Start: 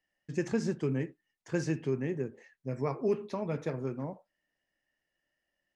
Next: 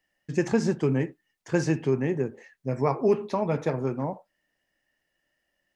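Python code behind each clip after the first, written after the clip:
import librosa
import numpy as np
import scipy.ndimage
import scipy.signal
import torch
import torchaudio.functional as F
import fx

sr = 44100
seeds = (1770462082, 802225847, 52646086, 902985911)

y = fx.dynamic_eq(x, sr, hz=830.0, q=1.9, threshold_db=-52.0, ratio=4.0, max_db=6)
y = y * librosa.db_to_amplitude(6.5)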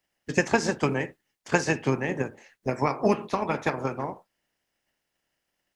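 y = fx.spec_clip(x, sr, under_db=17)
y = fx.transient(y, sr, attack_db=6, sustain_db=1)
y = y * librosa.db_to_amplitude(-3.0)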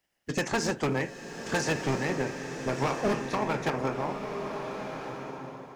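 y = np.clip(x, -10.0 ** (-23.0 / 20.0), 10.0 ** (-23.0 / 20.0))
y = fx.rev_bloom(y, sr, seeds[0], attack_ms=1400, drr_db=5.5)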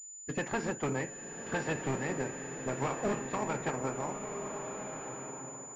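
y = fx.pwm(x, sr, carrier_hz=7000.0)
y = y * librosa.db_to_amplitude(-5.0)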